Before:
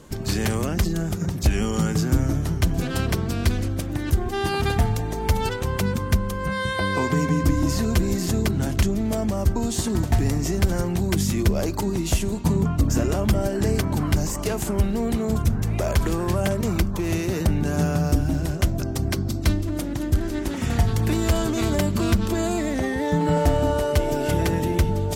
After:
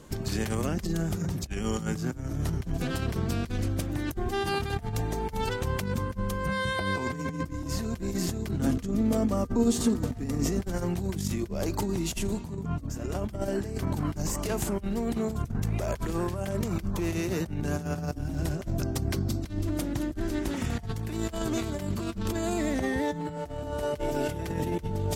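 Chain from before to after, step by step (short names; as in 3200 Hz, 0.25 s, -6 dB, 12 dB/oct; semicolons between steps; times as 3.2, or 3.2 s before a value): negative-ratio compressor -24 dBFS, ratio -0.5; 8.6–10.6 small resonant body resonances 250/470/1200 Hz, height 12 dB, ringing for 85 ms; gain -5.5 dB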